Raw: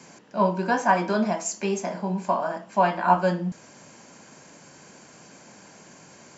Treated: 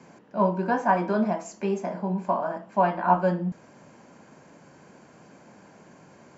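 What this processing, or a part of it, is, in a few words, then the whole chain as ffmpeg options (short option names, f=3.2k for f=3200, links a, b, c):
through cloth: -af "highshelf=f=2.8k:g=-16"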